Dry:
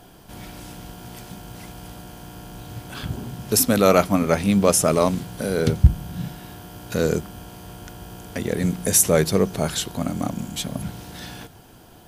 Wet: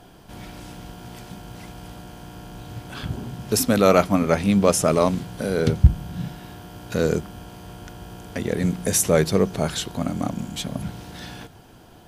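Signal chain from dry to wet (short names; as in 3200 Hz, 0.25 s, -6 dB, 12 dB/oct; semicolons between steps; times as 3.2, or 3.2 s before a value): high shelf 8700 Hz -9 dB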